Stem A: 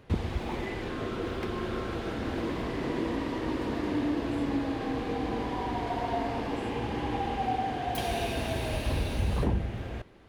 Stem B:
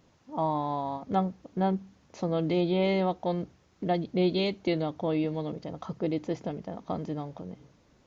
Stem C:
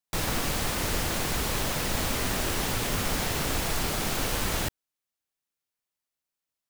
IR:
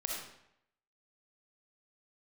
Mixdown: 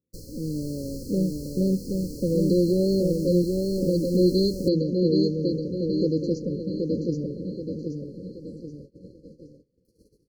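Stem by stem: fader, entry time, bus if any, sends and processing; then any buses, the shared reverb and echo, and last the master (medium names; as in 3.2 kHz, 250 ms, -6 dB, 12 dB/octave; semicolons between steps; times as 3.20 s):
-15.0 dB, 1.90 s, no send, no echo send, hum notches 60/120 Hz; AM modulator 250 Hz, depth 95%
+1.5 dB, 0.00 s, no send, echo send -4 dB, high-pass 55 Hz; level-controlled noise filter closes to 830 Hz, open at -23 dBFS; treble shelf 5.4 kHz +9.5 dB
-4.5 dB, 0.00 s, no send, no echo send, treble shelf 5 kHz -6 dB; auto duck -8 dB, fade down 0.25 s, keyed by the second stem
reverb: none
echo: feedback delay 777 ms, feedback 43%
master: gate -45 dBFS, range -24 dB; level rider gain up to 4 dB; brick-wall FIR band-stop 570–4100 Hz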